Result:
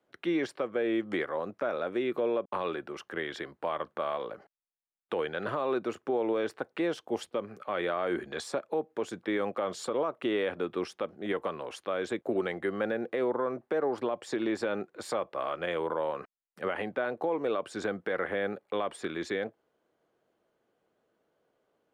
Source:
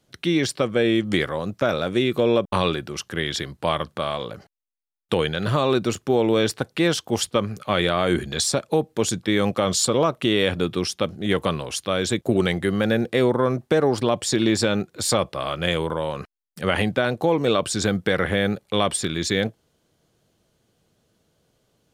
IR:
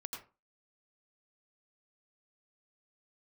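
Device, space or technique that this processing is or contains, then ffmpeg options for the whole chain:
DJ mixer with the lows and highs turned down: -filter_complex "[0:a]asettb=1/sr,asplit=3[a][b][c];[a]atrim=end=6.814[d];[b]atrim=start=6.81:end=7.48,asetpts=PTS-STARTPTS,afade=t=in:d=0.004:c=qsin,afade=t=out:st=0.666:d=0.004:c=qsin,equalizer=f=1.3k:t=o:w=1.5:g=-5.5[e];[c]atrim=start=7.476[f];[d][e]acrossfade=d=0.004:c1=hsin:c2=qsin[g];[g][f]acrossfade=d=0.004:c1=qsin:c2=hsin,acrossover=split=280 2200:gain=0.1 1 0.126[h][i][j];[h][i][j]amix=inputs=3:normalize=0,alimiter=limit=-17dB:level=0:latency=1:release=198,volume=-3.5dB"

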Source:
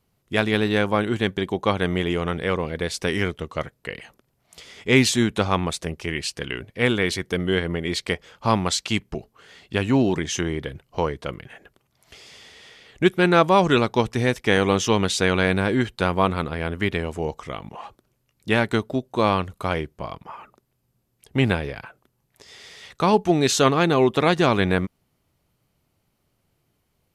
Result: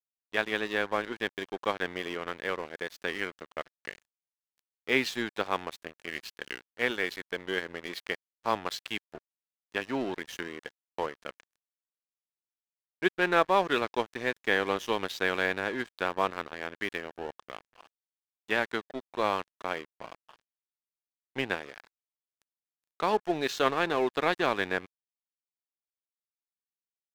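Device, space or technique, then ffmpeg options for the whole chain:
pocket radio on a weak battery: -af "highpass=360,lowpass=4.2k,aeval=exprs='sgn(val(0))*max(abs(val(0))-0.02,0)':c=same,equalizer=f=1.7k:t=o:w=0.23:g=5,volume=-6dB"

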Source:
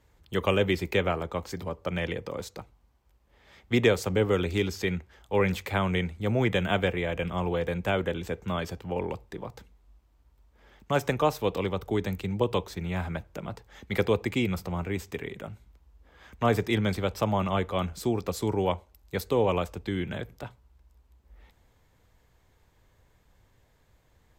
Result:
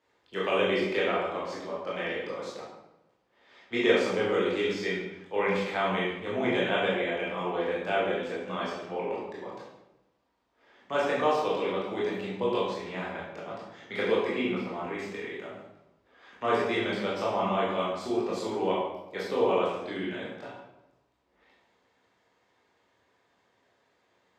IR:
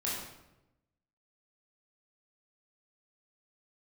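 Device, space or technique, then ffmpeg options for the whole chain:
supermarket ceiling speaker: -filter_complex "[0:a]asettb=1/sr,asplit=3[a][b][c];[a]atrim=end=14.314[d];[b]atrim=start=14.31:end=14.98,asetpts=PTS-STARTPTS,afade=t=in:d=0.004:c=qsin,afade=t=out:st=0.666:d=0.004:c=qsin,acrossover=split=3700[e][f];[f]acompressor=threshold=-55dB:ratio=4:attack=1:release=60[g];[e][g]amix=inputs=2:normalize=0[h];[c]atrim=start=14.976[i];[d][h]acrossfade=d=0.004:c1=hsin:c2=qsin[j];[j][i]acrossfade=d=0.004:c1=qsin:c2=hsin,highpass=320,lowpass=5.4k[k];[1:a]atrim=start_sample=2205[l];[k][l]afir=irnorm=-1:irlink=0,volume=-3.5dB"

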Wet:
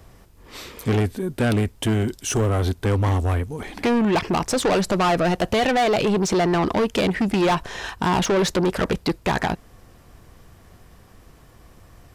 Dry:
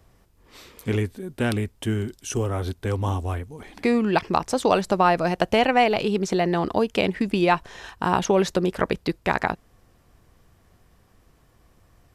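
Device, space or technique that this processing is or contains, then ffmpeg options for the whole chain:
saturation between pre-emphasis and de-emphasis: -af "highshelf=f=10k:g=10.5,asoftclip=type=tanh:threshold=-25dB,highshelf=f=10k:g=-10.5,volume=9dB"

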